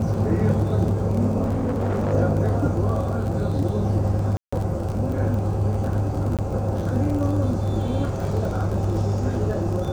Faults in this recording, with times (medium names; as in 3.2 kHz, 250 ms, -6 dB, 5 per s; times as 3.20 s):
crackle 29 per s -28 dBFS
1.45–2.14 s: clipped -19.5 dBFS
4.37–4.53 s: dropout 155 ms
6.37–6.39 s: dropout 17 ms